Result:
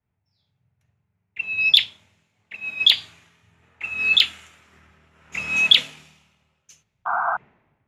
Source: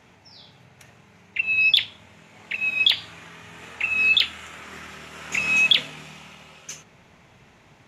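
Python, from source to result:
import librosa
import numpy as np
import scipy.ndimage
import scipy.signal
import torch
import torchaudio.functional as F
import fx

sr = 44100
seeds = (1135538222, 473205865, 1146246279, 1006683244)

y = fx.spec_paint(x, sr, seeds[0], shape='noise', start_s=7.05, length_s=0.32, low_hz=660.0, high_hz=1600.0, level_db=-24.0)
y = fx.band_widen(y, sr, depth_pct=100)
y = F.gain(torch.from_numpy(y), -3.5).numpy()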